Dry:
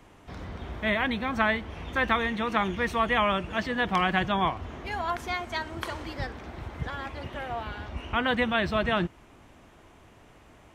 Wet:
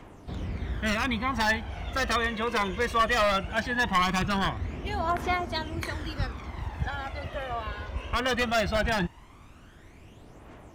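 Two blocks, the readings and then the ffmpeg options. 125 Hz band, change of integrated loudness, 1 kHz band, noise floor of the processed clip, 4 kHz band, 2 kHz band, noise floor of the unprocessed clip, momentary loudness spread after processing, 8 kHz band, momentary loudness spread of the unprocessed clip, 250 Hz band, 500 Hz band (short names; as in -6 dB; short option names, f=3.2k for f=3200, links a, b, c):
+2.5 dB, 0.0 dB, 0.0 dB, -51 dBFS, +1.5 dB, 0.0 dB, -55 dBFS, 11 LU, +10.0 dB, 12 LU, -1.5 dB, 0.0 dB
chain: -af "aeval=exprs='0.112*(abs(mod(val(0)/0.112+3,4)-2)-1)':c=same,aphaser=in_gain=1:out_gain=1:delay=2:decay=0.55:speed=0.19:type=triangular"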